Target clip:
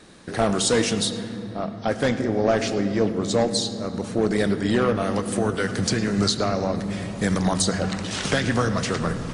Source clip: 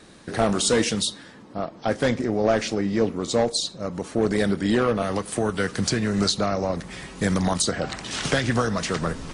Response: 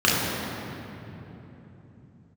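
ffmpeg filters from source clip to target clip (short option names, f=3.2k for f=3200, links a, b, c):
-filter_complex "[0:a]asplit=2[a][b];[1:a]atrim=start_sample=2205,adelay=74[c];[b][c]afir=irnorm=-1:irlink=0,volume=-31dB[d];[a][d]amix=inputs=2:normalize=0"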